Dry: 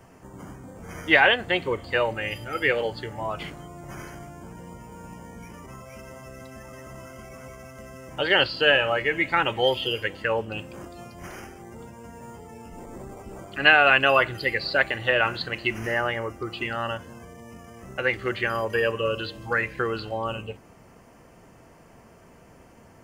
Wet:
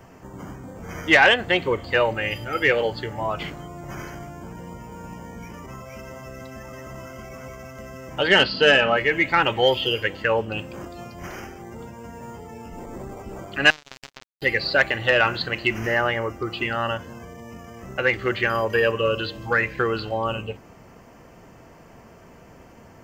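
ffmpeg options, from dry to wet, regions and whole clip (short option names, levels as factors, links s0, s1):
-filter_complex "[0:a]asettb=1/sr,asplit=3[s0][s1][s2];[s0]atrim=end=8.284[s3];[s1]atrim=start=8.28:end=8.97,asetpts=PTS-STARTPTS,afade=t=in:d=0.004:c=qsin,afade=t=out:st=0.686:d=0.004:c=qsin,lowpass=f=6100:w=0.5412,lowpass=f=6100:w=1.3066,equalizer=f=210:w=1.9:g=7.5,aecho=1:1:4.6:0.38,atrim=end_sample=30429[s4];[s2]atrim=start=8.966[s5];[s3][s4]acrossfade=d=0.004:c1=hsin:c2=qsin[s6];[s6][s5]acrossfade=d=0.004:c1=qsin:c2=hsin,asettb=1/sr,asplit=3[s7][s8][s9];[s7]atrim=end=13.704[s10];[s8]atrim=start=13.7:end=14.42,asetpts=PTS-STARTPTS,afade=t=in:d=0.004:c=qsin,afade=t=out:st=0.716:d=0.004:c=qsin,acompressor=threshold=0.0355:ratio=5:attack=3.2:release=140:knee=1:detection=peak,aeval=exprs='(tanh(5.01*val(0)+0.7)-tanh(0.7))/5.01':c=same,acrusher=bits=3:mix=0:aa=0.5[s11];[s9]atrim=start=14.416[s12];[s10][s11]acrossfade=d=0.004:c1=hsin:c2=qsin[s13];[s13][s12]acrossfade=d=0.004:c1=qsin:c2=hsin,equalizer=f=9900:w=3.2:g=-14,acontrast=82,volume=0.708"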